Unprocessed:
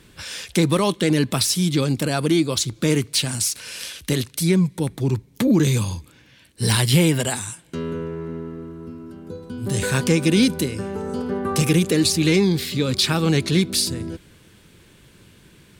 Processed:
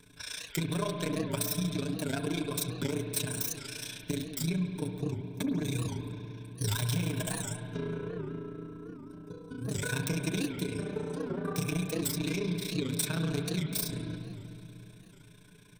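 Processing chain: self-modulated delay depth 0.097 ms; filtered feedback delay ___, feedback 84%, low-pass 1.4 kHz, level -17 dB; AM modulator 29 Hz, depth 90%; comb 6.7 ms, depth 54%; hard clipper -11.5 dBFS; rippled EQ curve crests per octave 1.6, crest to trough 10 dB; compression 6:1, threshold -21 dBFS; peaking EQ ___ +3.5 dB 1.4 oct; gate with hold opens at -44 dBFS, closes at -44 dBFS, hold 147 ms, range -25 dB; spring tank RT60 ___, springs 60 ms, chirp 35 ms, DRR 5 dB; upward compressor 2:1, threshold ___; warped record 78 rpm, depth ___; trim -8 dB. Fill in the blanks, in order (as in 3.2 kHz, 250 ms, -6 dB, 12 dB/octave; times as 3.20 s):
111 ms, 7.7 kHz, 2.7 s, -49 dBFS, 160 cents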